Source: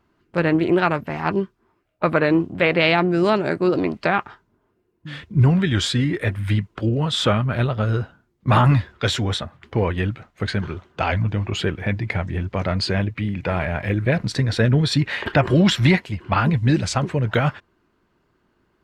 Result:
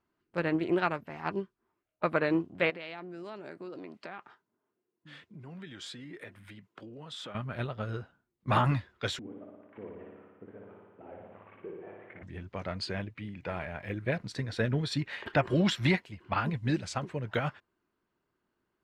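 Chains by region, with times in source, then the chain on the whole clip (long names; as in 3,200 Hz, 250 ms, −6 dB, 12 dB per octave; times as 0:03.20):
0:02.70–0:07.35: downward compressor 4 to 1, threshold −25 dBFS + high-pass filter 160 Hz
0:09.19–0:12.23: variable-slope delta modulation 16 kbit/s + auto-filter band-pass saw up 1.7 Hz 250–1,800 Hz + flutter between parallel walls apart 9.9 metres, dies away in 1.4 s
whole clip: low-shelf EQ 140 Hz −7 dB; expander for the loud parts 1.5 to 1, over −27 dBFS; level −7.5 dB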